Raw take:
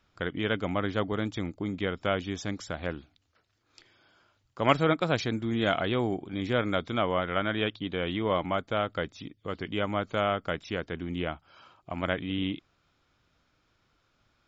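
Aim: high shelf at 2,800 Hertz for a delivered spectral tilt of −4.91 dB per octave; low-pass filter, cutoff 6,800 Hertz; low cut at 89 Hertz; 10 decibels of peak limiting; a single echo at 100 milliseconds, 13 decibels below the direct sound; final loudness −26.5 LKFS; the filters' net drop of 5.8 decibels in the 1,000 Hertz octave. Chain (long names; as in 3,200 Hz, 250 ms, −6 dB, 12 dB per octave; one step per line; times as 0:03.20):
high-pass filter 89 Hz
low-pass filter 6,800 Hz
parametric band 1,000 Hz −8 dB
high-shelf EQ 2,800 Hz −3 dB
brickwall limiter −20.5 dBFS
single-tap delay 100 ms −13 dB
level +7.5 dB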